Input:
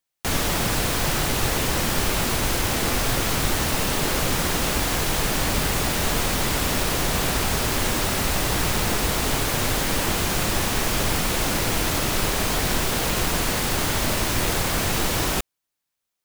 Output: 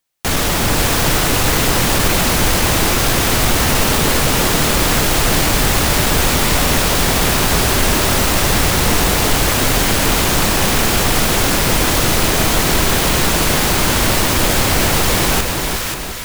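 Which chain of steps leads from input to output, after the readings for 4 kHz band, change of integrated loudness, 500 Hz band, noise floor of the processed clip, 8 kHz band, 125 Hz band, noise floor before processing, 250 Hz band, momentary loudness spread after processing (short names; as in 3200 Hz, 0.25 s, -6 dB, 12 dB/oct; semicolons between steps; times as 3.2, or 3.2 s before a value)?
+8.5 dB, +8.5 dB, +8.5 dB, -20 dBFS, +8.5 dB, +8.5 dB, -82 dBFS, +8.5 dB, 1 LU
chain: hard clip -18.5 dBFS, distortion -15 dB; split-band echo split 1200 Hz, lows 0.357 s, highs 0.534 s, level -4 dB; gain +7.5 dB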